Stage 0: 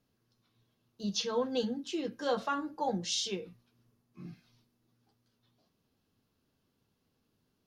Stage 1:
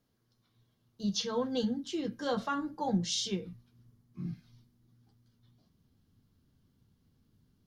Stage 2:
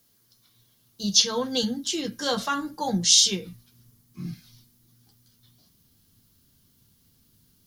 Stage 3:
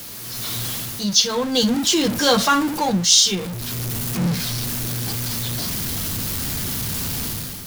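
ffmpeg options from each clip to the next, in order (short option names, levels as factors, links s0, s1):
-af "asubboost=boost=4.5:cutoff=230,bandreject=f=2600:w=11"
-af "crystalizer=i=6:c=0,volume=1.5"
-af "aeval=exprs='val(0)+0.5*0.0376*sgn(val(0))':c=same,dynaudnorm=f=110:g=7:m=3.16,volume=0.891"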